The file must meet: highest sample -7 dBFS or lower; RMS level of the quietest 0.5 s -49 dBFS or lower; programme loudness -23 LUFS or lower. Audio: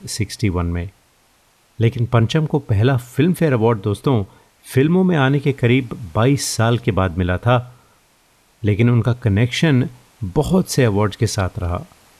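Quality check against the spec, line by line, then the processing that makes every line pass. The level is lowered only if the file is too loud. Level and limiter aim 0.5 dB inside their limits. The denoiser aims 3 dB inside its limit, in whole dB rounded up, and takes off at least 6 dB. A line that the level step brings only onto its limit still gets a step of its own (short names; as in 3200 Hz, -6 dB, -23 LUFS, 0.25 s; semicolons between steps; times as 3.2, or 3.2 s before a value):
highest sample -5.0 dBFS: fail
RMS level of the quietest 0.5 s -57 dBFS: OK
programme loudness -18.0 LUFS: fail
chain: gain -5.5 dB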